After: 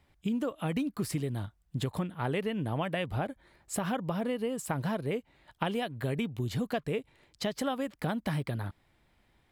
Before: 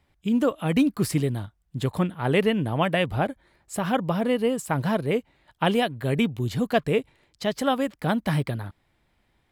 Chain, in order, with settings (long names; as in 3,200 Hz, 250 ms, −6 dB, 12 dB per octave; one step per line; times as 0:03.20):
downward compressor, threshold −29 dBFS, peak gain reduction 12.5 dB